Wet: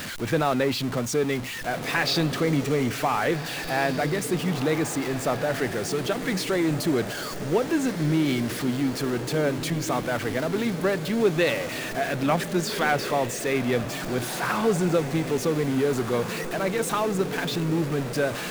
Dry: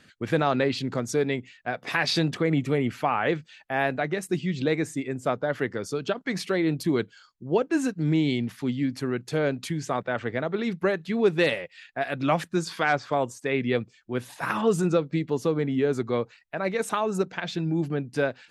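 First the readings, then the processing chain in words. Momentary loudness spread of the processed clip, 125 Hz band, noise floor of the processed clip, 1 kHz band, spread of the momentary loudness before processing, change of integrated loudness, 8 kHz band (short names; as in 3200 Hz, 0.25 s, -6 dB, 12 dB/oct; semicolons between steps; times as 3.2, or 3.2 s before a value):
4 LU, +2.0 dB, -33 dBFS, +1.5 dB, 7 LU, +1.5 dB, +7.5 dB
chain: zero-crossing step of -27.5 dBFS; diffused feedback echo 1.692 s, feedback 45%, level -10 dB; gain -1.5 dB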